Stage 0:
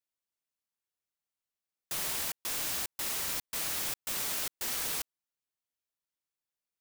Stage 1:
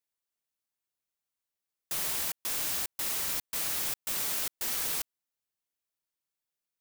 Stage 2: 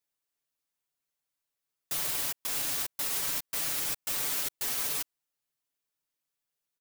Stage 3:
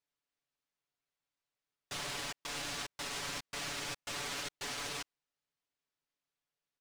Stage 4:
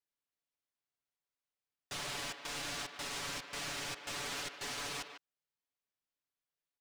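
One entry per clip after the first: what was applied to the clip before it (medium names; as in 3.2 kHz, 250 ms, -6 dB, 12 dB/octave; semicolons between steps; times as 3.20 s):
treble shelf 9.7 kHz +3.5 dB
comb 7 ms, depth 81%; peak limiter -21 dBFS, peak gain reduction 4.5 dB
distance through air 96 m
speakerphone echo 150 ms, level -8 dB; waveshaping leveller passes 1; trim -4 dB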